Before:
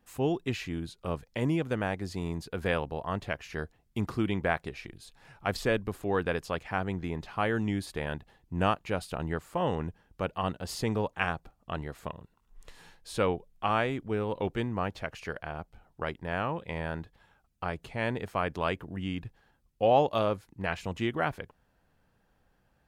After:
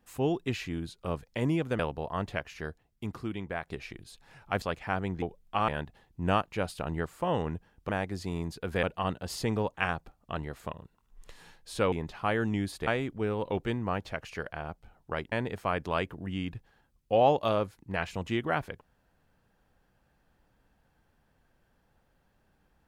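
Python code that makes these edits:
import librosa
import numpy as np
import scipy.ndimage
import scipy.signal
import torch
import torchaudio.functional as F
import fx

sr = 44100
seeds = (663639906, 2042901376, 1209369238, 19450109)

y = fx.edit(x, sr, fx.move(start_s=1.79, length_s=0.94, to_s=10.22),
    fx.fade_out_to(start_s=3.28, length_s=1.33, curve='qua', floor_db=-7.5),
    fx.cut(start_s=5.56, length_s=0.9),
    fx.swap(start_s=7.06, length_s=0.95, other_s=13.31, other_length_s=0.46),
    fx.cut(start_s=16.22, length_s=1.8), tone=tone)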